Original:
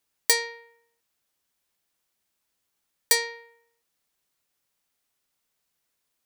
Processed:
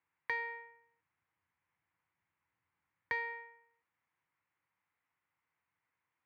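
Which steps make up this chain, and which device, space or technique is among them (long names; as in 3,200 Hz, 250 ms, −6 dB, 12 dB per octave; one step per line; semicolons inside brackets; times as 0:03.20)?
bass amplifier (downward compressor 3 to 1, threshold −28 dBFS, peak gain reduction 10 dB; loudspeaker in its box 84–2,200 Hz, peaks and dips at 84 Hz +4 dB, 230 Hz −10 dB, 410 Hz −9 dB, 620 Hz −9 dB, 980 Hz +5 dB, 2,100 Hz +5 dB)
0:00.39–0:03.33: low-shelf EQ 170 Hz +8.5 dB
level −1 dB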